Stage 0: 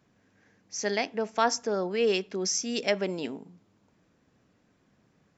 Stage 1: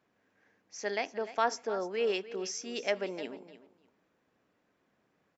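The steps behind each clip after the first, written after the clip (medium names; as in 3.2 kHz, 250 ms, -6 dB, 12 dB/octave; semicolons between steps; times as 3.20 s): tone controls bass -12 dB, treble -8 dB; feedback delay 300 ms, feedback 16%, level -15 dB; trim -3.5 dB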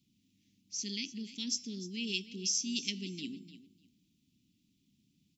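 inverse Chebyshev band-stop 510–1600 Hz, stop band 50 dB; de-hum 333.2 Hz, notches 33; trim +7.5 dB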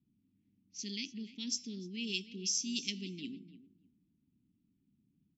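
level-controlled noise filter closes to 1.1 kHz, open at -30.5 dBFS; trim -1.5 dB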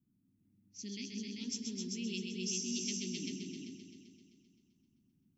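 peaking EQ 3.5 kHz -7.5 dB 1.6 oct; on a send: multi-head delay 130 ms, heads all three, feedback 43%, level -6 dB; on the sum: trim -1 dB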